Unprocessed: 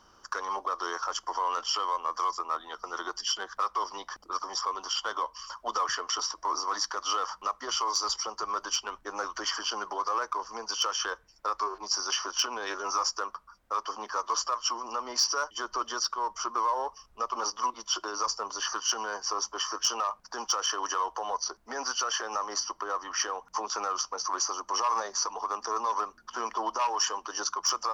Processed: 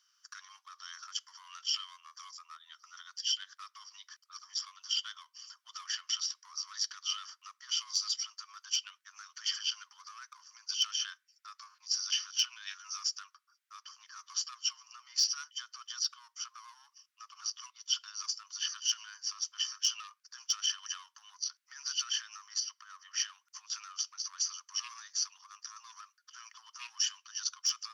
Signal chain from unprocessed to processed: Bessel high-pass 2500 Hz, order 8; dynamic EQ 3200 Hz, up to +8 dB, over -46 dBFS, Q 1; gain -5.5 dB

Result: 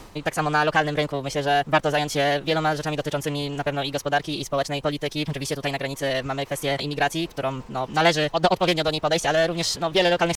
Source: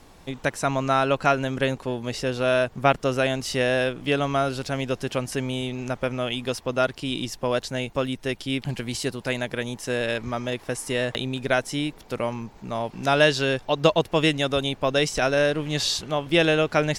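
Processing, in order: pitch shift +2 st; reverse; upward compressor, threshold -27 dBFS; reverse; dynamic EQ 240 Hz, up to -5 dB, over -40 dBFS, Q 2.2; time stretch by phase-locked vocoder 0.61×; in parallel at -8 dB: soft clip -23 dBFS, distortion -8 dB; on the sum: Doppler distortion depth 0.25 ms

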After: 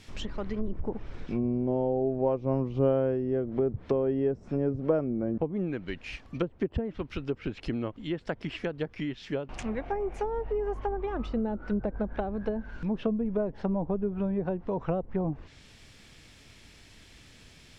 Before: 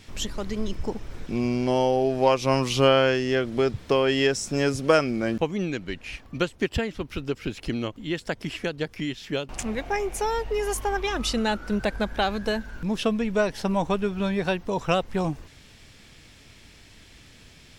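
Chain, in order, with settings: treble ducked by the level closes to 520 Hz, closed at -21 dBFS; 1.44–3.5 high shelf 5100 Hz +7.5 dB; gain -3 dB

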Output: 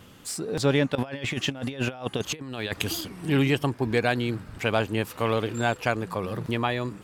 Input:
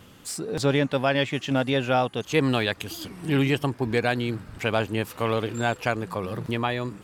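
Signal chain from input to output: 0.95–3.01 negative-ratio compressor -29 dBFS, ratio -0.5

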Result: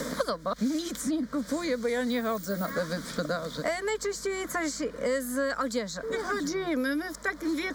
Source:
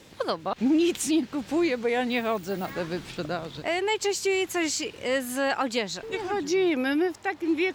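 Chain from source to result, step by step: hum 50 Hz, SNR 27 dB; fixed phaser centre 540 Hz, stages 8; three-band squash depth 100%

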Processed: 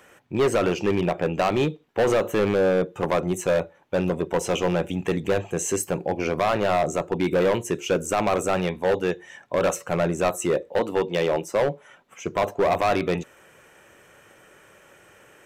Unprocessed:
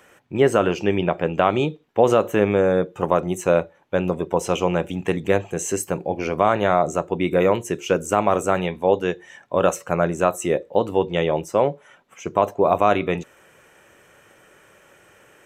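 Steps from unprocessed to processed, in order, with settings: 10.69–11.62 HPF 180 Hz 12 dB/oct; overloaded stage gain 16 dB

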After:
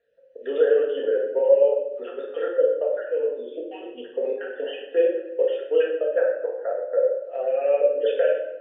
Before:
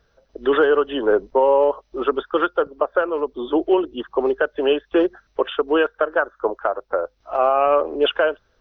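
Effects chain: random spectral dropouts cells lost 34%; vowel filter e; shoebox room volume 350 m³, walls mixed, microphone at 1.7 m

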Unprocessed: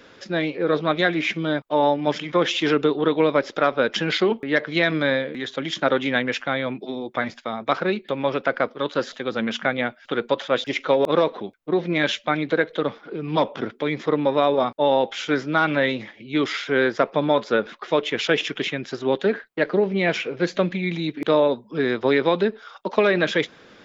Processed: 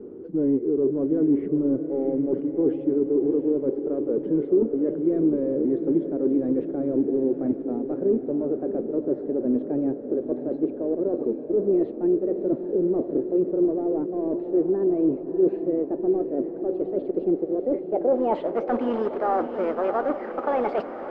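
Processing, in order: speed glide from 88% -> 138%; bell 390 Hz +9 dB 1.8 oct; reverse; compressor 16:1, threshold -21 dBFS, peak gain reduction 16 dB; reverse; companded quantiser 4-bit; soft clip -18.5 dBFS, distortion -15 dB; low-pass sweep 360 Hz -> 1200 Hz, 17.54–18.62; on a send: diffused feedback echo 0.678 s, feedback 64%, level -9 dB

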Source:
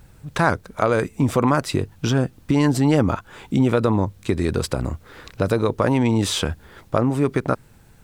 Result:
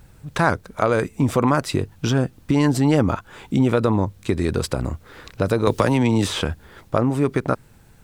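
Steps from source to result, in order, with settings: 5.67–6.41 three-band squash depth 100%

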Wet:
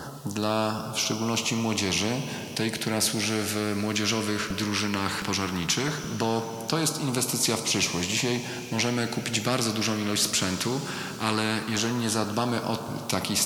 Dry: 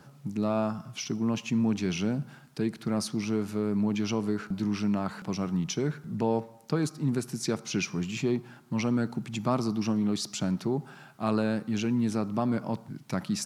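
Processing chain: LFO notch saw down 0.17 Hz 540–2400 Hz; two-slope reverb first 0.21 s, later 4.6 s, from -22 dB, DRR 8.5 dB; spectral compressor 2:1; gain +5 dB

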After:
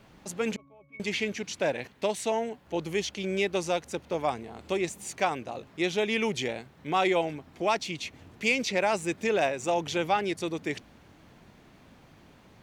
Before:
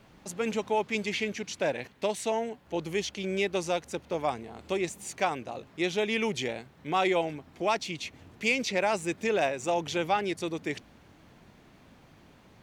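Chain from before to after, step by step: 0.56–1 octave resonator C#, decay 0.4 s; gain +1 dB

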